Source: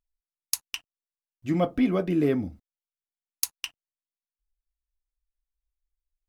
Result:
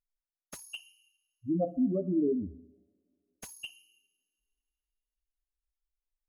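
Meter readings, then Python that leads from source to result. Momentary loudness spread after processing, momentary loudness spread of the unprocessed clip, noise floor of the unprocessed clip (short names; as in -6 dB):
19 LU, 14 LU, under -85 dBFS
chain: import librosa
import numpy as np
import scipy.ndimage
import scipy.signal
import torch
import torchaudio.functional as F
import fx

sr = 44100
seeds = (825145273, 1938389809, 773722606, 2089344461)

y = fx.spec_expand(x, sr, power=3.2)
y = fx.rev_double_slope(y, sr, seeds[0], early_s=0.91, late_s=3.0, knee_db=-27, drr_db=14.0)
y = fx.slew_limit(y, sr, full_power_hz=86.0)
y = y * 10.0 ** (-4.0 / 20.0)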